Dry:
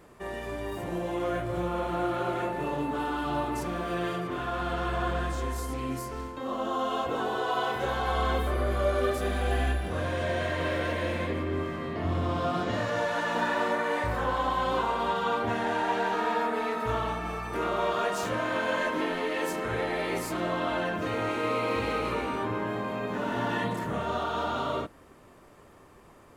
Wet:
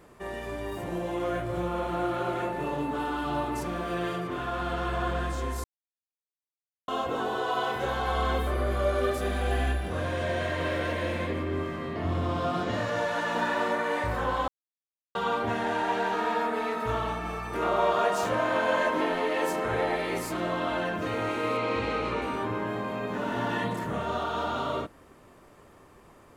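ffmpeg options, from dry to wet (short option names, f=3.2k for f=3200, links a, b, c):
-filter_complex "[0:a]asettb=1/sr,asplit=3[a][b][c];[a]atrim=end=17.624[d];[b]atrim=start=17.62:end=19.96,asetpts=PTS-STARTPTS,afade=t=in:d=0.004:c=qsin,afade=t=out:st=2.336:d=0.004:c=qsin,equalizer=f=750:w=1.1:g=5.5[e];[c]atrim=start=19.956[f];[d][e]acrossfade=d=0.004:c1=hsin:c2=qsin[g];[g][f]acrossfade=d=0.004:c1=qsin:c2=hsin,asettb=1/sr,asplit=3[h][i][j];[h]atrim=end=21.574[k];[i]atrim=start=21.57:end=22.22,asetpts=PTS-STARTPTS,afade=t=in:d=0.004:c=qsin,afade=t=out:st=0.646:d=0.004:c=qsin,lowpass=6.6k[l];[j]atrim=start=22.216[m];[k][l]acrossfade=d=0.004:c1=hsin:c2=qsin[n];[n][m]acrossfade=d=0.004:c1=qsin:c2=hsin,asplit=5[o][p][q][r][s];[o]atrim=end=5.64,asetpts=PTS-STARTPTS,afade=t=out:st=5.636:d=0.004:c=hsin[t];[p]atrim=start=5.64:end=6.88,asetpts=PTS-STARTPTS,volume=0[u];[q]atrim=start=6.88:end=14.48,asetpts=PTS-STARTPTS,afade=t=in:d=0.004:c=hsin,afade=t=out:st=7.596:d=0.004:c=hsin[v];[r]atrim=start=14.48:end=15.15,asetpts=PTS-STARTPTS,volume=0[w];[s]atrim=start=15.15,asetpts=PTS-STARTPTS,afade=t=in:d=0.004:c=hsin[x];[t][u][v][w][x]concat=n=5:v=0:a=1"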